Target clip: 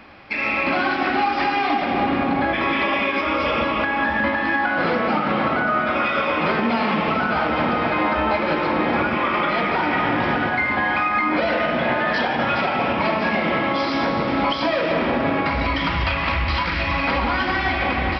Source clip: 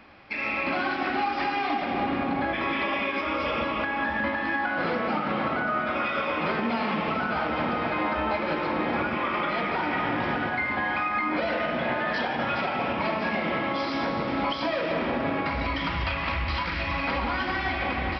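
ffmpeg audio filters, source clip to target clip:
-af "acontrast=71"

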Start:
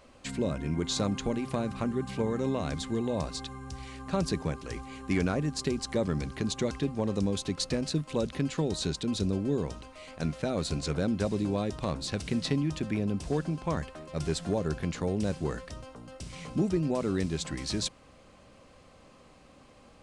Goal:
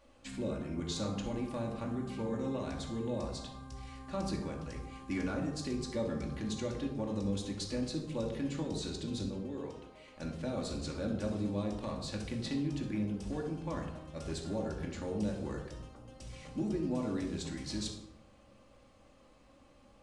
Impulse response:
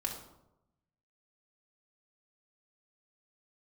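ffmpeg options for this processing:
-filter_complex "[0:a]asettb=1/sr,asplit=3[s0][s1][s2];[s0]atrim=end=9.274[s3];[s1]atrim=start=9.27:end=10.16,asetpts=PTS-STARTPTS,afade=t=in:d=0.004:c=qsin,afade=t=out:st=0.886:d=0.004:c=qsin,bass=f=250:g=-13,treble=f=4000:g=-6[s4];[s2]atrim=start=10.156[s5];[s3][s4]acrossfade=d=0.004:c1=hsin:c2=qsin[s6];[s6][s5]acrossfade=d=0.004:c1=qsin:c2=hsin[s7];[1:a]atrim=start_sample=2205[s8];[s7][s8]afir=irnorm=-1:irlink=0,volume=0.355"

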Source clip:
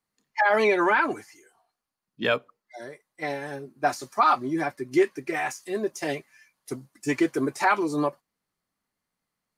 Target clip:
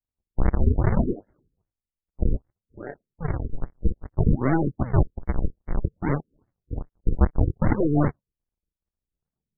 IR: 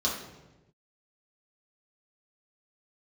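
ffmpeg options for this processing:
-af "afwtdn=0.0282,asubboost=boost=5.5:cutoff=190,acompressor=threshold=0.02:ratio=1.5,aresample=8000,acrusher=samples=35:mix=1:aa=0.000001:lfo=1:lforange=56:lforate=0.6,aresample=44100,aeval=exprs='0.15*(cos(1*acos(clip(val(0)/0.15,-1,1)))-cos(1*PI/2))+0.015*(cos(8*acos(clip(val(0)/0.15,-1,1)))-cos(8*PI/2))':c=same,afftfilt=real='re*lt(b*sr/1024,480*pow(2300/480,0.5+0.5*sin(2*PI*2.5*pts/sr)))':imag='im*lt(b*sr/1024,480*pow(2300/480,0.5+0.5*sin(2*PI*2.5*pts/sr)))':win_size=1024:overlap=0.75,volume=2.66"

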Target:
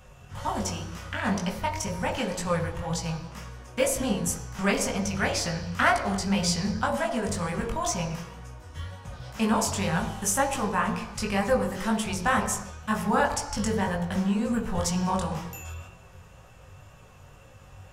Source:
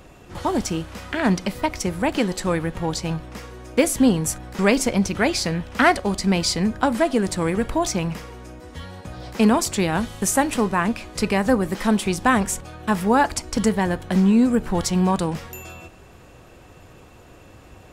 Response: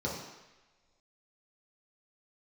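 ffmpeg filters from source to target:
-filter_complex "[0:a]asplit=2[s0][s1];[1:a]atrim=start_sample=2205,afade=t=out:st=0.4:d=0.01,atrim=end_sample=18081[s2];[s1][s2]afir=irnorm=-1:irlink=0,volume=0.316[s3];[s0][s3]amix=inputs=2:normalize=0,flanger=delay=17:depth=5.3:speed=2,equalizer=f=280:t=o:w=1.4:g=-12.5"

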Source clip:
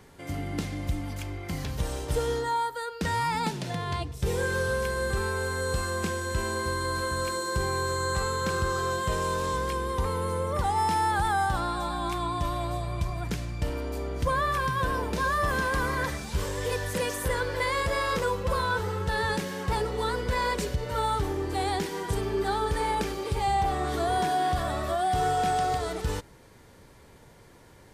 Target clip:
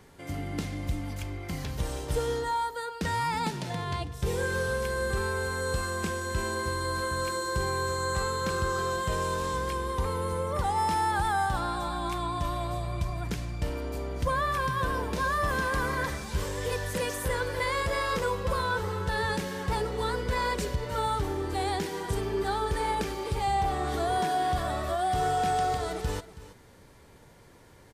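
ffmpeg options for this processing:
-af "aecho=1:1:325:0.158,volume=0.841"

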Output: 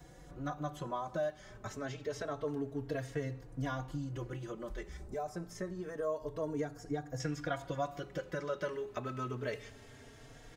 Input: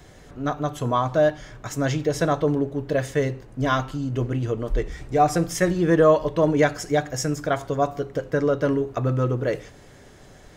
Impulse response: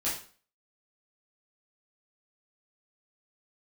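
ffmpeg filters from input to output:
-filter_complex "[0:a]acrossover=split=980|5300[s0][s1][s2];[s0]acompressor=threshold=0.0316:ratio=4[s3];[s1]acompressor=threshold=0.0178:ratio=4[s4];[s2]acompressor=threshold=0.00178:ratio=4[s5];[s3][s4][s5]amix=inputs=3:normalize=0,asetnsamples=n=441:p=0,asendcmd='4.97 equalizer g -14;7.2 equalizer g 3',equalizer=f=2800:w=0.73:g=-4.5,asplit=2[s6][s7];[s7]adelay=3.7,afreqshift=0.27[s8];[s6][s8]amix=inputs=2:normalize=1,volume=0.631"

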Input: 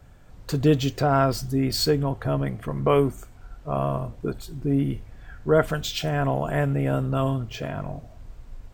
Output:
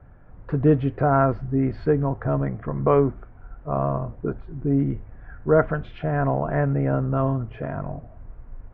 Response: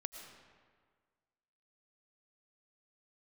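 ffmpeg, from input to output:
-af "lowpass=f=1800:w=0.5412,lowpass=f=1800:w=1.3066,volume=1.19"

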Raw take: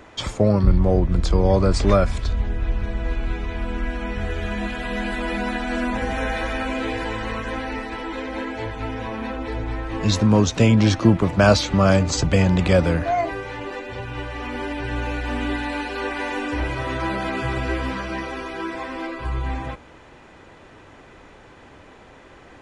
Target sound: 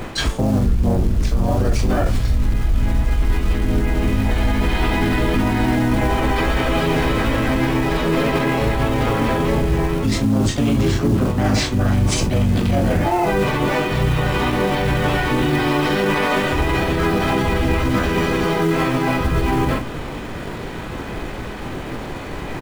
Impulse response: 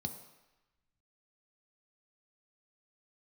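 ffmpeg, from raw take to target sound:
-filter_complex "[0:a]equalizer=f=240:w=1.6:g=6,bandreject=f=90.79:t=h:w=4,bandreject=f=181.58:t=h:w=4,bandreject=f=272.37:t=h:w=4,bandreject=f=363.16:t=h:w=4,bandreject=f=453.95:t=h:w=4,bandreject=f=544.74:t=h:w=4,bandreject=f=635.53:t=h:w=4,bandreject=f=726.32:t=h:w=4,bandreject=f=817.11:t=h:w=4,bandreject=f=907.9:t=h:w=4,bandreject=f=998.69:t=h:w=4,bandreject=f=1089.48:t=h:w=4,flanger=delay=20:depth=5.6:speed=0.17,asplit=2[s0][s1];[s1]adelay=43,volume=0.398[s2];[s0][s2]amix=inputs=2:normalize=0,acrusher=bits=5:mode=log:mix=0:aa=0.000001,lowshelf=f=83:g=7,acontrast=50,asplit=3[s3][s4][s5];[s4]asetrate=22050,aresample=44100,atempo=2,volume=0.891[s6];[s5]asetrate=55563,aresample=44100,atempo=0.793701,volume=0.891[s7];[s3][s6][s7]amix=inputs=3:normalize=0,areverse,acompressor=threshold=0.0794:ratio=4,areverse,alimiter=level_in=6.31:limit=0.891:release=50:level=0:latency=1,volume=0.398"

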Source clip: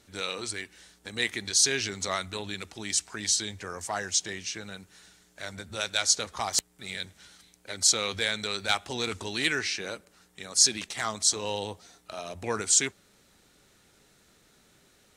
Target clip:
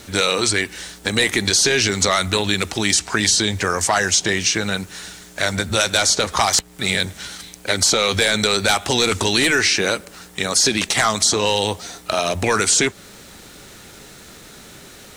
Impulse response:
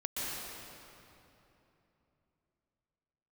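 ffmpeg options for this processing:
-filter_complex "[0:a]apsyclip=15,acrusher=bits=7:mix=0:aa=0.000001,acrossover=split=1300|6400[s0][s1][s2];[s0]acompressor=threshold=0.178:ratio=4[s3];[s1]acompressor=threshold=0.178:ratio=4[s4];[s2]acompressor=threshold=0.1:ratio=4[s5];[s3][s4][s5]amix=inputs=3:normalize=0,volume=0.668"

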